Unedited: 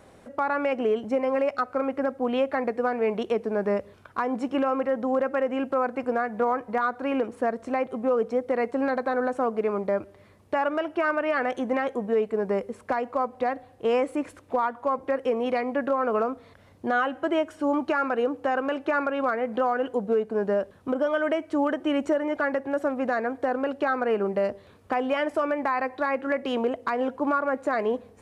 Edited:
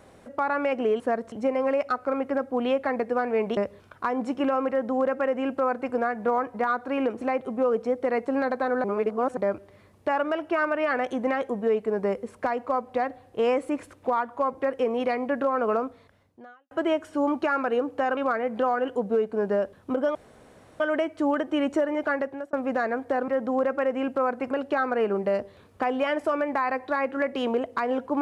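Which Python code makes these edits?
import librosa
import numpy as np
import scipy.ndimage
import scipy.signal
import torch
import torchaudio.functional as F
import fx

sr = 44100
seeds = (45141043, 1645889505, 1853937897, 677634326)

y = fx.edit(x, sr, fx.cut(start_s=3.25, length_s=0.46),
    fx.duplicate(start_s=4.84, length_s=1.23, to_s=23.61),
    fx.move(start_s=7.35, length_s=0.32, to_s=1.0),
    fx.reverse_span(start_s=9.3, length_s=0.53),
    fx.fade_out_span(start_s=16.3, length_s=0.87, curve='qua'),
    fx.cut(start_s=18.63, length_s=0.52),
    fx.insert_room_tone(at_s=21.13, length_s=0.65),
    fx.fade_out_span(start_s=22.39, length_s=0.47, curve='qsin'), tone=tone)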